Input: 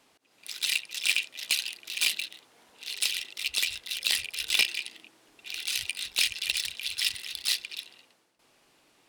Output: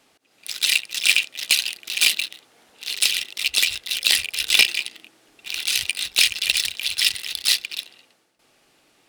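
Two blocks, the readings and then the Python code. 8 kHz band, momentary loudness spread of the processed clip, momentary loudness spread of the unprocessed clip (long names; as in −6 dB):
+8.5 dB, 13 LU, 13 LU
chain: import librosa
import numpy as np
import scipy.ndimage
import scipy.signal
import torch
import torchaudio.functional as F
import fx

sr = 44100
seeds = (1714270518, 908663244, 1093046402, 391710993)

p1 = fx.notch(x, sr, hz=1000.0, q=9.3)
p2 = np.where(np.abs(p1) >= 10.0 ** (-37.5 / 20.0), p1, 0.0)
p3 = p1 + F.gain(torch.from_numpy(p2), -3.0).numpy()
y = F.gain(torch.from_numpy(p3), 4.0).numpy()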